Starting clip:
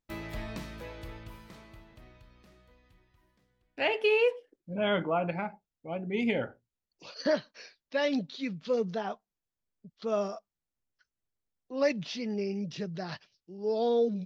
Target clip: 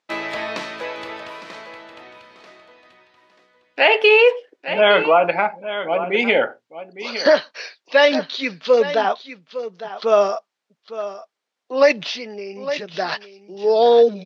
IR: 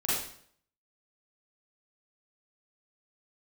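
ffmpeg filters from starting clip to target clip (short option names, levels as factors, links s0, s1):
-filter_complex "[0:a]asettb=1/sr,asplit=3[s0][s1][s2];[s0]atrim=end=12.034[s3];[s1]atrim=start=12.03:end=12.94,asetpts=PTS-STARTPTS,afade=t=in:d=0.004:c=qsin,afade=t=out:st=0.906:d=0.004:c=qsin,acompressor=threshold=0.01:ratio=5[s4];[s2]atrim=start=12.936[s5];[s3][s4]acrossfade=d=0.004:c1=hsin:c2=qsin[s6];[s6][s5]acrossfade=d=0.004:c1=qsin:c2=hsin,highpass=500,lowpass=4900,aecho=1:1:858:0.224,alimiter=level_in=10.6:limit=0.891:release=50:level=0:latency=1,volume=0.708"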